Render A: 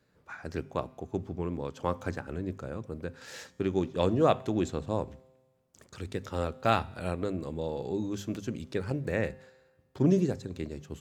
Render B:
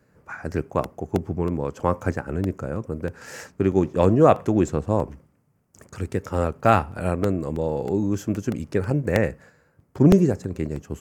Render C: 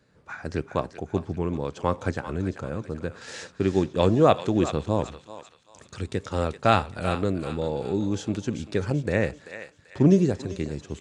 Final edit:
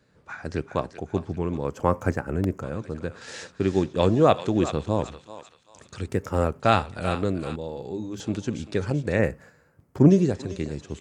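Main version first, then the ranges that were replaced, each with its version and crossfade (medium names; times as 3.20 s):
C
1.65–2.62 s: from B
6.08–6.60 s: from B
7.56–8.20 s: from A
9.19–10.09 s: from B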